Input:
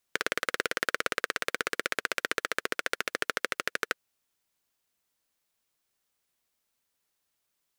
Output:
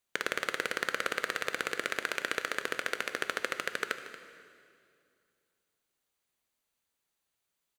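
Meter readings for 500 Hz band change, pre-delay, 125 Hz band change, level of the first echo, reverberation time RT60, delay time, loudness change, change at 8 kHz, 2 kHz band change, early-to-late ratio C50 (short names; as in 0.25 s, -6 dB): -2.0 dB, 11 ms, -1.5 dB, -15.5 dB, 2.4 s, 0.231 s, -2.0 dB, -3.5 dB, -2.0 dB, 9.0 dB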